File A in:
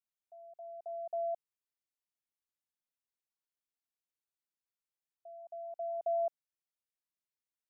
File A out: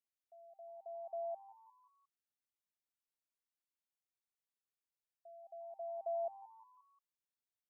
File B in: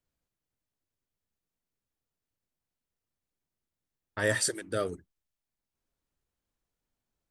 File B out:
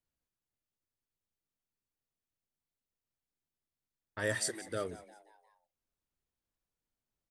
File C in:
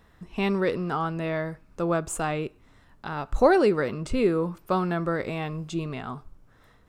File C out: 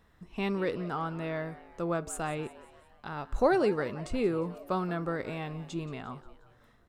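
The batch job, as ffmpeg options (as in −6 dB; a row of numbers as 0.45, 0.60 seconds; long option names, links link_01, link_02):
-filter_complex "[0:a]asplit=5[link_01][link_02][link_03][link_04][link_05];[link_02]adelay=177,afreqshift=110,volume=-17.5dB[link_06];[link_03]adelay=354,afreqshift=220,volume=-23.5dB[link_07];[link_04]adelay=531,afreqshift=330,volume=-29.5dB[link_08];[link_05]adelay=708,afreqshift=440,volume=-35.6dB[link_09];[link_01][link_06][link_07][link_08][link_09]amix=inputs=5:normalize=0,volume=-6dB"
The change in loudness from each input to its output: −6.0, −6.0, −6.0 LU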